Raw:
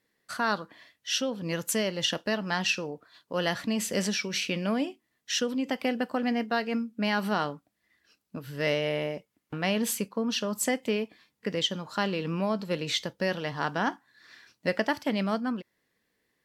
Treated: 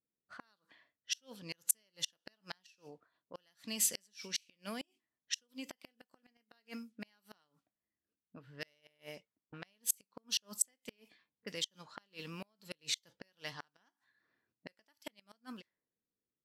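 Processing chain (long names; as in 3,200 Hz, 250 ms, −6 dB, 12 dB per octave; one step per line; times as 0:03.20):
low-pass that shuts in the quiet parts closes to 360 Hz, open at −27 dBFS
gate with flip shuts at −19 dBFS, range −35 dB
first-order pre-emphasis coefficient 0.9
level +3.5 dB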